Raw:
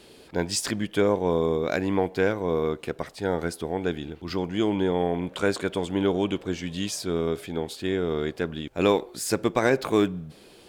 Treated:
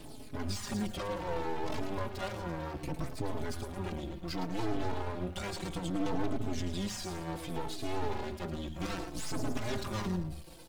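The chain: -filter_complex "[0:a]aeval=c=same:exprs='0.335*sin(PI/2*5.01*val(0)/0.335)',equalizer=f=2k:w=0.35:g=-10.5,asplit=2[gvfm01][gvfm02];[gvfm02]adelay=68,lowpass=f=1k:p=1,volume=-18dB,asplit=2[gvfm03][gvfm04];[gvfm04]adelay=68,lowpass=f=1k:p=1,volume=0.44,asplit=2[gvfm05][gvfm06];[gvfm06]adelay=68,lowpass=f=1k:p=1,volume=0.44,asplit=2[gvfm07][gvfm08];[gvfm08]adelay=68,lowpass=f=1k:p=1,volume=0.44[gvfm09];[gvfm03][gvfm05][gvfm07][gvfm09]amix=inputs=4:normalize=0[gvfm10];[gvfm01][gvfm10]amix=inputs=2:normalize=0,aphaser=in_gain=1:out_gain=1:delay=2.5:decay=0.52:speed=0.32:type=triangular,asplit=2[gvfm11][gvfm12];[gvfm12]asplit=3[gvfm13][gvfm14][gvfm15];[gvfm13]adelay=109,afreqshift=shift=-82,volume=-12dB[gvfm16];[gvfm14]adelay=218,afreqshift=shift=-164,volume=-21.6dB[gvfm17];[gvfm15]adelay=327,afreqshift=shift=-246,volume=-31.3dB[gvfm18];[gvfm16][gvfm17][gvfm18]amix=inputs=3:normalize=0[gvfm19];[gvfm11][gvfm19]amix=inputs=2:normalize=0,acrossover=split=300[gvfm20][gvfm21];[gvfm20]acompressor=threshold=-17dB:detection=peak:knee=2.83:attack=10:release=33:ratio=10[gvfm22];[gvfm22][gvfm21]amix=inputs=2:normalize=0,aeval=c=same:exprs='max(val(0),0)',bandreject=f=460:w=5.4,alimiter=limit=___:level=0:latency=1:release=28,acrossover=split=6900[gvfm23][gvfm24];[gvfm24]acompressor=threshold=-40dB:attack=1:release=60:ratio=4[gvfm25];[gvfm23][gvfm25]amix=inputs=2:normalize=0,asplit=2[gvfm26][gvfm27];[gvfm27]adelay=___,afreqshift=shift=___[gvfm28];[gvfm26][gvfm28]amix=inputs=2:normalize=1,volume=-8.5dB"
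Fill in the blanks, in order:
-11.5dB, 4.1, -0.65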